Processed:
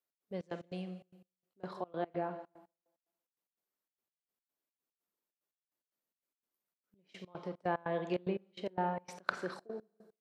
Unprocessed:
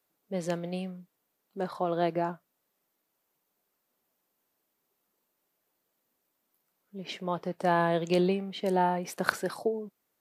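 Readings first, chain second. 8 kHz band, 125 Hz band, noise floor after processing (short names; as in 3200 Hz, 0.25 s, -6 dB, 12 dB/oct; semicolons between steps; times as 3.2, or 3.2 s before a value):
under -15 dB, -10.0 dB, under -85 dBFS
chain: low shelf 65 Hz -10 dB; tape echo 0.17 s, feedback 36%, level -15 dB, low-pass 1600 Hz; Schroeder reverb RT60 1.1 s, combs from 33 ms, DRR 10.5 dB; gate -57 dBFS, range -8 dB; bell 780 Hz -3 dB 0.22 oct; treble ducked by the level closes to 2400 Hz, closed at -23.5 dBFS; step gate "x.xx.x.xxx.x.." 147 bpm -24 dB; gain -7 dB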